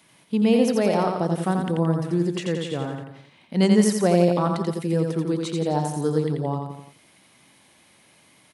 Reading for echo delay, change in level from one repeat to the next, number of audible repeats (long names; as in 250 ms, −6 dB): 86 ms, −6.0 dB, 4